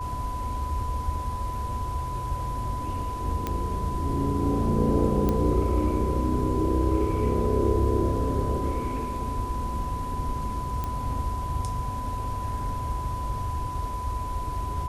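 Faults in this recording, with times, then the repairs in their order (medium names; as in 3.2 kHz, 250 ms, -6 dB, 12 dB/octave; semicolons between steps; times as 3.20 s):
whine 1 kHz -32 dBFS
3.47 s: pop -14 dBFS
5.29 s: pop -13 dBFS
10.84 s: pop -17 dBFS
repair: de-click; band-stop 1 kHz, Q 30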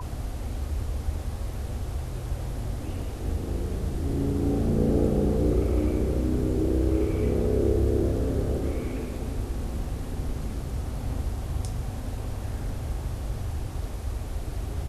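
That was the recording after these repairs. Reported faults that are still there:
nothing left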